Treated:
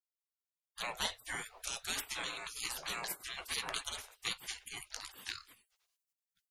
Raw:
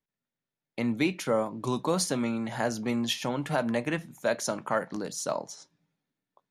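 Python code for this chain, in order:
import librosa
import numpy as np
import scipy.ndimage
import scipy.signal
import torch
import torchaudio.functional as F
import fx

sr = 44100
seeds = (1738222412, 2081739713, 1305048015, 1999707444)

y = fx.spec_gate(x, sr, threshold_db=-30, keep='weak')
y = F.gain(torch.from_numpy(y), 10.0).numpy()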